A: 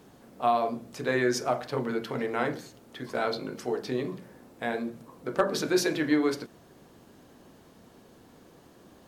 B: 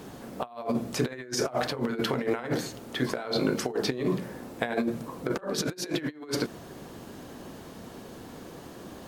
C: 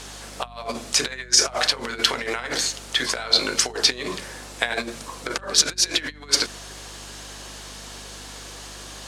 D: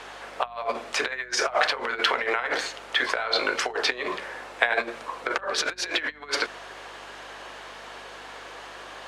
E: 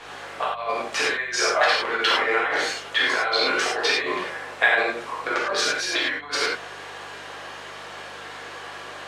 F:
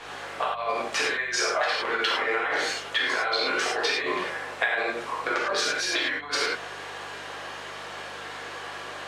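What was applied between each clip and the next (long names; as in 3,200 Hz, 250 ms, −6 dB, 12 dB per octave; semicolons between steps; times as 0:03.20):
compressor whose output falls as the input rises −34 dBFS, ratio −0.5; level +5 dB
meter weighting curve ITU-R 468; mains hum 50 Hz, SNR 19 dB; level +5 dB
three-way crossover with the lows and the highs turned down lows −19 dB, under 390 Hz, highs −20 dB, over 2,800 Hz; level +4 dB
reverb whose tail is shaped and stops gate 130 ms flat, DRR −6.5 dB; level −3.5 dB
downward compressor 6 to 1, threshold −22 dBFS, peak gain reduction 8.5 dB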